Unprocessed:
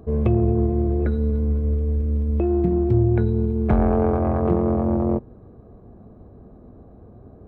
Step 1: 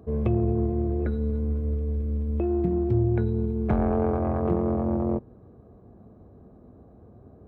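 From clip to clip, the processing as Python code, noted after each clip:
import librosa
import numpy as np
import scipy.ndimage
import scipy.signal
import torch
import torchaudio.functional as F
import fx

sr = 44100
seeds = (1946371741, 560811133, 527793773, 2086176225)

y = scipy.signal.sosfilt(scipy.signal.butter(2, 55.0, 'highpass', fs=sr, output='sos'), x)
y = F.gain(torch.from_numpy(y), -4.5).numpy()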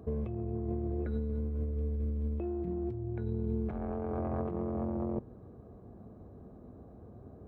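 y = fx.over_compress(x, sr, threshold_db=-29.0, ratio=-1.0)
y = F.gain(torch.from_numpy(y), -5.0).numpy()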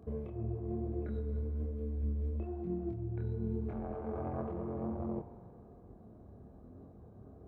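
y = fx.chorus_voices(x, sr, voices=2, hz=1.1, base_ms=26, depth_ms=3.6, mix_pct=45)
y = fx.rev_spring(y, sr, rt60_s=2.0, pass_ms=(44,), chirp_ms=55, drr_db=9.5)
y = F.gain(torch.from_numpy(y), -1.0).numpy()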